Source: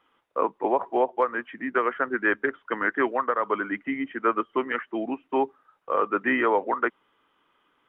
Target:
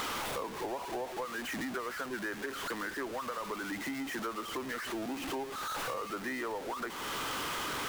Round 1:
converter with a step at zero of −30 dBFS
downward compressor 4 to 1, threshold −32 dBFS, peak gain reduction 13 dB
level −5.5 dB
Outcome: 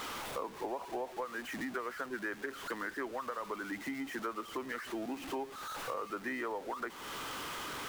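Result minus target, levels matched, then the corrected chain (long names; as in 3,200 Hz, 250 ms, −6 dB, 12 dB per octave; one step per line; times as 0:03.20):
converter with a step at zero: distortion −7 dB
converter with a step at zero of −21 dBFS
downward compressor 4 to 1, threshold −32 dBFS, peak gain reduction 14 dB
level −5.5 dB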